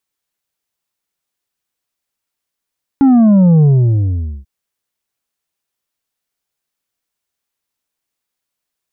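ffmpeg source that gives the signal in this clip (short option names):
-f lavfi -i "aevalsrc='0.501*clip((1.44-t)/0.83,0,1)*tanh(1.88*sin(2*PI*280*1.44/log(65/280)*(exp(log(65/280)*t/1.44)-1)))/tanh(1.88)':d=1.44:s=44100"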